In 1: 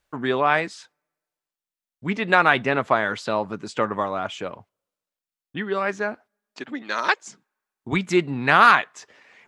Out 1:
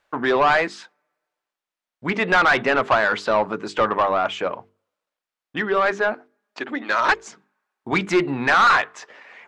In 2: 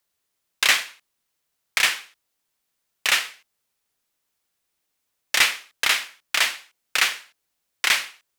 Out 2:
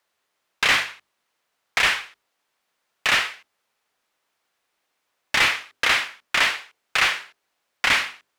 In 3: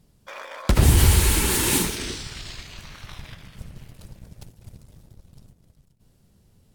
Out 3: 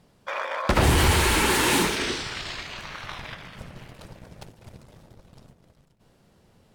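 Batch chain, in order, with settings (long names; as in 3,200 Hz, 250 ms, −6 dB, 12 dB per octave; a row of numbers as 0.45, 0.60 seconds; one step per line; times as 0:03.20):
mid-hump overdrive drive 18 dB, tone 1,400 Hz, clips at −1 dBFS
mains-hum notches 50/100/150/200/250/300/350/400/450 Hz
soft clipping −10 dBFS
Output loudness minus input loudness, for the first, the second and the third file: +1.5, +0.5, −3.0 LU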